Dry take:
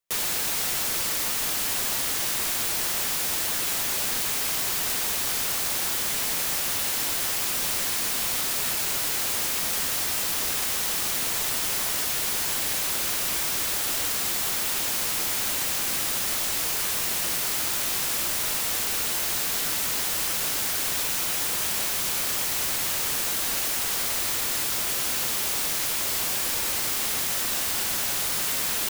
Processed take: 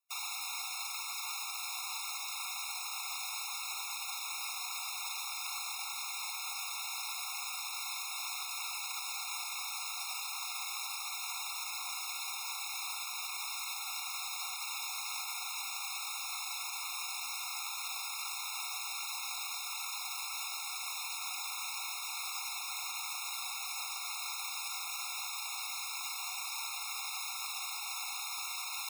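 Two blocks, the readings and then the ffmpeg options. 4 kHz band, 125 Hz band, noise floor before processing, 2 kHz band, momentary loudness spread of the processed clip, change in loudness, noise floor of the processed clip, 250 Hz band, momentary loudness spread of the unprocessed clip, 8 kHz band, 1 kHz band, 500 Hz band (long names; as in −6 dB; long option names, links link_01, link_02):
−10.0 dB, below −40 dB, −27 dBFS, −10.0 dB, 0 LU, −13.5 dB, −41 dBFS, below −40 dB, 0 LU, −13.5 dB, −7.5 dB, below −25 dB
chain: -filter_complex "[0:a]acrossover=split=7500[link_01][link_02];[link_02]acompressor=threshold=-34dB:ratio=4:attack=1:release=60[link_03];[link_01][link_03]amix=inputs=2:normalize=0,highpass=730,alimiter=level_in=3dB:limit=-24dB:level=0:latency=1,volume=-3dB,afftfilt=real='re*eq(mod(floor(b*sr/1024/710),2),1)':imag='im*eq(mod(floor(b*sr/1024/710),2),1)':win_size=1024:overlap=0.75"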